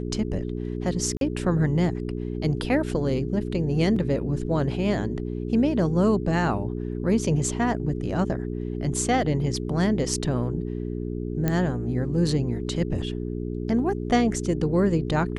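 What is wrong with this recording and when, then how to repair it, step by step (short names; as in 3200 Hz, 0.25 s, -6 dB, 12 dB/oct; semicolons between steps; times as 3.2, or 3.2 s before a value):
hum 60 Hz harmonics 7 -30 dBFS
1.17–1.21 gap 42 ms
3.96 gap 4.2 ms
11.48 pop -11 dBFS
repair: de-click; de-hum 60 Hz, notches 7; interpolate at 1.17, 42 ms; interpolate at 3.96, 4.2 ms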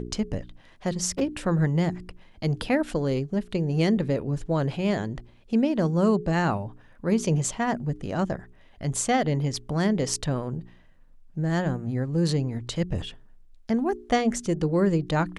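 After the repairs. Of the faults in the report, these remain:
none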